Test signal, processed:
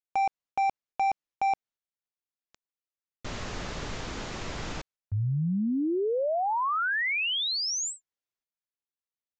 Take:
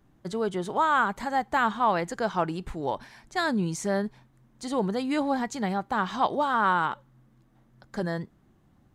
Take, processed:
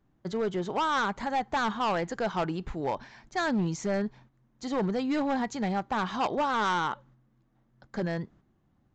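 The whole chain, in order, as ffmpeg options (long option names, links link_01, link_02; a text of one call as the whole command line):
ffmpeg -i in.wav -af "agate=range=-7dB:threshold=-54dB:ratio=16:detection=peak,highshelf=frequency=4000:gain=-4.5,aresample=16000,volume=23dB,asoftclip=hard,volume=-23dB,aresample=44100" out.wav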